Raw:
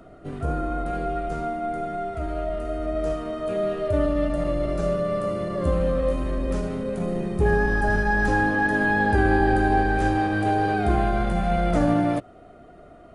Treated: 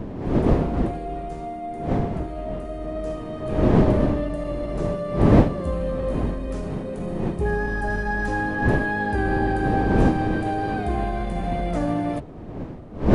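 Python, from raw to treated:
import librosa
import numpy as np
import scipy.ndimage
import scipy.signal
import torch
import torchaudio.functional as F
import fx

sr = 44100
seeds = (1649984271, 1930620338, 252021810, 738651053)

y = fx.dmg_wind(x, sr, seeds[0], corner_hz=310.0, level_db=-21.0)
y = fx.notch(y, sr, hz=1400.0, q=13.0)
y = y * 10.0 ** (-3.5 / 20.0)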